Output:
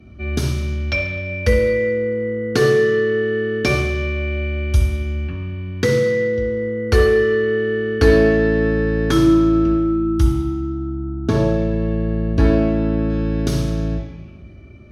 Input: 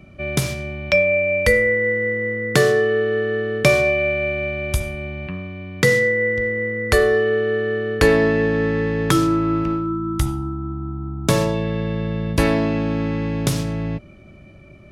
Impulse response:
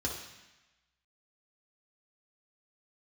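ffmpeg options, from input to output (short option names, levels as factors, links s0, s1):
-filter_complex "[0:a]asettb=1/sr,asplit=3[s0][s1][s2];[s0]atrim=end=10.894[s3];[s1]atrim=start=10.89:end=13.1,asetpts=PTS-STARTPTS,afade=t=in:d=0.004:c=qsin,afade=t=out:st=2.206:d=0.004:c=qsin,lowpass=f=2100:p=1[s4];[s2]atrim=start=13.096[s5];[s3][s4]acrossfade=d=0.004:c1=hsin:c2=qsin[s6];[s6][s5]acrossfade=d=0.004:c1=qsin:c2=hsin[s7];[1:a]atrim=start_sample=2205,asetrate=39690,aresample=44100[s8];[s7][s8]afir=irnorm=-1:irlink=0,volume=0.447"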